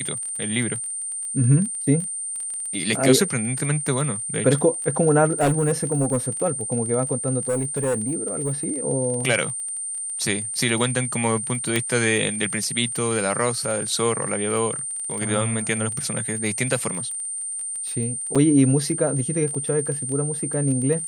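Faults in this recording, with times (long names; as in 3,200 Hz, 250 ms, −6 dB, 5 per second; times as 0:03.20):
surface crackle 26 per second −29 dBFS
whistle 8,900 Hz −27 dBFS
0:05.40–0:06.18: clipping −15.5 dBFS
0:07.48–0:08.68: clipping −19 dBFS
0:11.76: click −6 dBFS
0:18.35–0:18.36: drop-out 6 ms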